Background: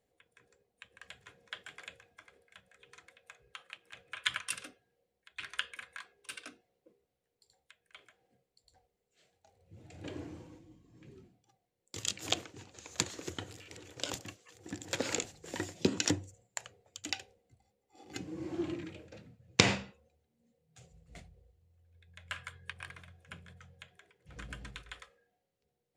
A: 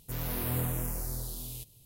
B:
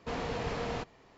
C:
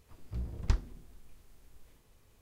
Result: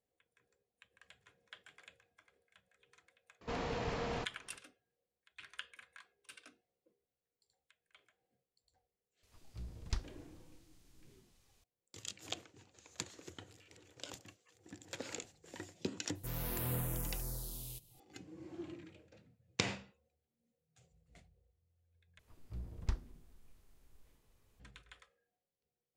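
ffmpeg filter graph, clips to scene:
-filter_complex "[3:a]asplit=2[a][b];[0:a]volume=-10.5dB[c];[2:a]acompressor=mode=upward:threshold=-45dB:ratio=4:attack=0.14:release=588:knee=2.83:detection=peak[d];[a]equalizer=f=5.3k:w=0.48:g=10.5[e];[1:a]aecho=1:1:5.9:0.32[f];[c]asplit=2[g][h];[g]atrim=end=22.194[i];[b]atrim=end=2.41,asetpts=PTS-STARTPTS,volume=-7.5dB[j];[h]atrim=start=24.596[k];[d]atrim=end=1.17,asetpts=PTS-STARTPTS,volume=-3.5dB,afade=t=in:d=0.004:c=hsin,afade=t=out:st=1.166:d=0.004:c=hsin,adelay=150381S[l];[e]atrim=end=2.41,asetpts=PTS-STARTPTS,volume=-9.5dB,afade=t=in:d=0.004:c=hsin,afade=t=out:st=2.406:d=0.004:c=hsin,adelay=9230[m];[f]atrim=end=1.85,asetpts=PTS-STARTPTS,volume=-6dB,afade=t=in:d=0.004:c=hsin,afade=t=out:st=1.846:d=0.004:c=hsin,adelay=16150[n];[i][j]acrossfade=d=0.004:c1=hsin:c2=hsin[o];[o][k]acrossfade=d=0.004:c1=hsin:c2=hsin[p];[p][l][m][n]amix=inputs=4:normalize=0"

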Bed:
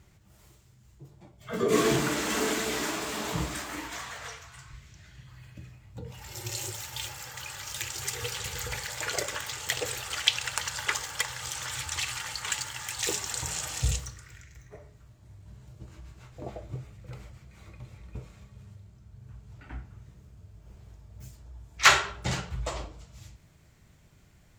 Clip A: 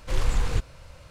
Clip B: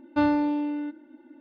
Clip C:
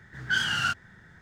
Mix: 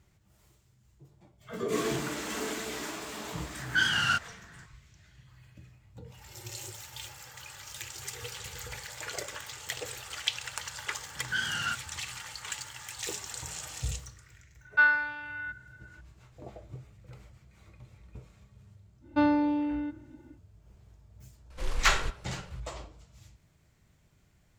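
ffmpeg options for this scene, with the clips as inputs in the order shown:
-filter_complex "[3:a]asplit=2[a][b];[2:a]asplit=2[c][d];[0:a]volume=-6.5dB[e];[a]acontrast=68[f];[c]highpass=f=1.5k:t=q:w=9.6[g];[1:a]equalizer=f=98:w=1.5:g=-9.5[h];[f]atrim=end=1.21,asetpts=PTS-STARTPTS,volume=-6.5dB,afade=t=in:d=0.004:c=hsin,afade=t=out:st=1.206:d=0.004:c=hsin,adelay=152145S[i];[b]atrim=end=1.21,asetpts=PTS-STARTPTS,volume=-5.5dB,afade=t=in:d=0.004:c=hsin,afade=t=out:st=1.206:d=0.004:c=hsin,adelay=11020[j];[g]atrim=end=1.4,asetpts=PTS-STARTPTS,volume=-2.5dB,afade=t=in:d=0.004:c=hsin,afade=t=out:st=1.396:d=0.004:c=hsin,adelay=14610[k];[d]atrim=end=1.4,asetpts=PTS-STARTPTS,volume=-2dB,afade=t=in:d=0.1,afade=t=out:st=1.3:d=0.1,adelay=19000[l];[h]atrim=end=1.1,asetpts=PTS-STARTPTS,volume=-7dB,afade=t=in:d=0.004:c=hsin,afade=t=out:st=1.096:d=0.004:c=hsin,adelay=21500[m];[e][i][j][k][l][m]amix=inputs=6:normalize=0"

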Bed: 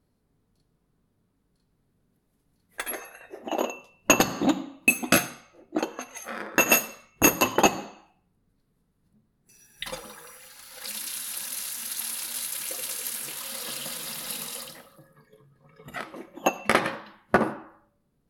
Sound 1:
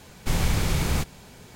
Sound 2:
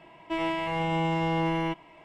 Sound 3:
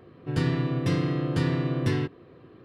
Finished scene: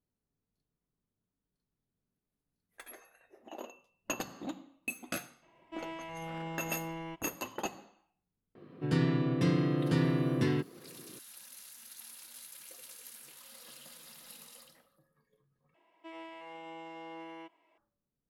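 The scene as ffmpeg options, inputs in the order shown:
-filter_complex "[2:a]asplit=2[a][b];[0:a]volume=-17.5dB[c];[3:a]highpass=f=180:t=q:w=1.5[d];[b]highpass=f=270:w=0.5412,highpass=f=270:w=1.3066[e];[c]asplit=2[f][g];[f]atrim=end=15.744[h];[e]atrim=end=2.04,asetpts=PTS-STARTPTS,volume=-17.5dB[i];[g]atrim=start=17.776[j];[a]atrim=end=2.04,asetpts=PTS-STARTPTS,volume=-13.5dB,afade=t=in:d=0.004:c=hsin,afade=t=out:st=2.036:d=0.004:c=hsin,adelay=5420[k];[d]atrim=end=2.64,asetpts=PTS-STARTPTS,volume=-4dB,afade=t=in:d=0.004:c=hsin,afade=t=out:st=2.636:d=0.004:c=hsin,adelay=8550[l];[h][i]acrossfade=d=0.004:c1=hsin:c2=hsin[m];[m][j]acrossfade=d=0.004:c1=hsin:c2=hsin[n];[n][k][l]amix=inputs=3:normalize=0"

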